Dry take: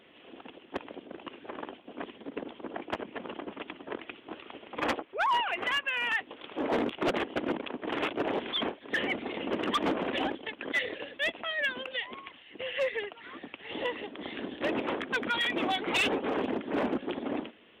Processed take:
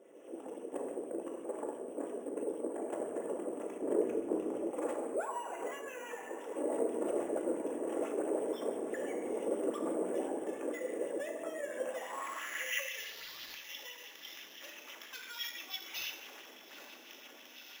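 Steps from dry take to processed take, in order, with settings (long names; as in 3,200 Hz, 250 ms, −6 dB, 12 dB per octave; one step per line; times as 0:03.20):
0:11.94–0:13.55: linear delta modulator 64 kbit/s, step −38 dBFS
camcorder AGC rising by 6.8 dB per second
feedback delay with all-pass diffusion 920 ms, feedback 76%, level −16 dB
convolution reverb RT60 1.1 s, pre-delay 3 ms, DRR −1 dB
downward compressor 3 to 1, threshold −31 dBFS, peak gain reduction 9.5 dB
band-pass filter sweep 460 Hz → 4,900 Hz, 0:11.71–0:13.25
decimation without filtering 5×
0:03.82–0:04.71: low-shelf EQ 460 Hz +11.5 dB
auto-filter bell 6 Hz 370–3,200 Hz +6 dB
level +1.5 dB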